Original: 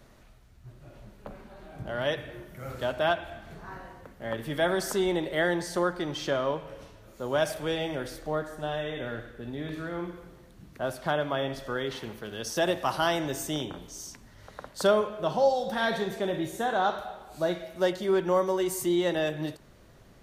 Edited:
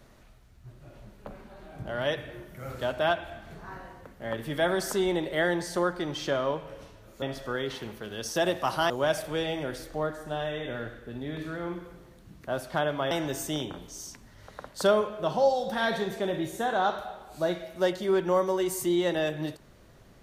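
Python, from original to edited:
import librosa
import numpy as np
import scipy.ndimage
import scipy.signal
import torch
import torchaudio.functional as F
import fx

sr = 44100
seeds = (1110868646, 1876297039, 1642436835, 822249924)

y = fx.edit(x, sr, fx.move(start_s=11.43, length_s=1.68, to_s=7.22), tone=tone)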